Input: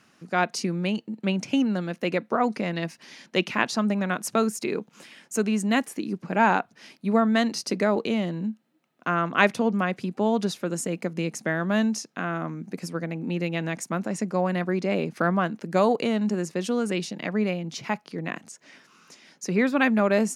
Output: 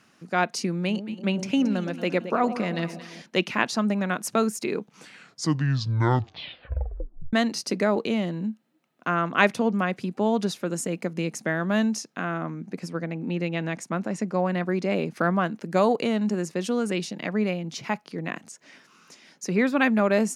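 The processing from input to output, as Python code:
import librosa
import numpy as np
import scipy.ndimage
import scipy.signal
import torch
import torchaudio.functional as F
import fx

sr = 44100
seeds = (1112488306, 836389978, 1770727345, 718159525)

y = fx.echo_alternate(x, sr, ms=112, hz=880.0, feedback_pct=67, wet_db=-10, at=(0.78, 3.22))
y = fx.high_shelf(y, sr, hz=8800.0, db=-11.5, at=(12.34, 14.65))
y = fx.edit(y, sr, fx.tape_stop(start_s=4.78, length_s=2.55), tone=tone)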